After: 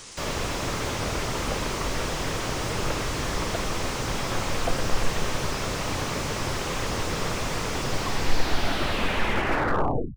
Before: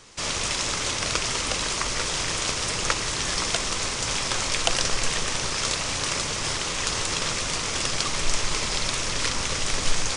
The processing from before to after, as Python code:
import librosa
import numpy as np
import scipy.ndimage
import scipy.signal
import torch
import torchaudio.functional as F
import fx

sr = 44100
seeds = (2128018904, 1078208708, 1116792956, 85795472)

y = fx.tape_stop_end(x, sr, length_s=2.28)
y = fx.high_shelf(y, sr, hz=6100.0, db=9.0)
y = fx.slew_limit(y, sr, full_power_hz=54.0)
y = y * 10.0 ** (4.0 / 20.0)